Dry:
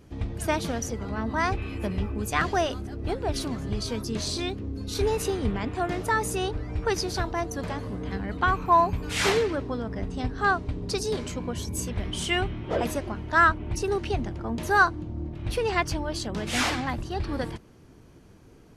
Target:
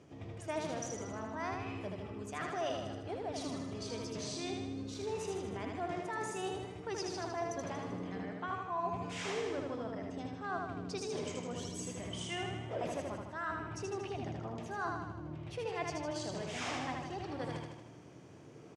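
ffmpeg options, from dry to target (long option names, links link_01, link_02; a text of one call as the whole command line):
ffmpeg -i in.wav -af "areverse,acompressor=threshold=-36dB:ratio=6,areverse,highpass=frequency=110:width=0.5412,highpass=frequency=110:width=1.3066,equalizer=frequency=220:width_type=q:width=4:gain=-7,equalizer=frequency=650:width_type=q:width=4:gain=4,equalizer=frequency=1500:width_type=q:width=4:gain=-3,equalizer=frequency=4200:width_type=q:width=4:gain=-6,lowpass=frequency=8100:width=0.5412,lowpass=frequency=8100:width=1.3066,aecho=1:1:78|156|234|312|390|468|546|624:0.668|0.394|0.233|0.137|0.081|0.0478|0.0282|0.0166,volume=-1.5dB" out.wav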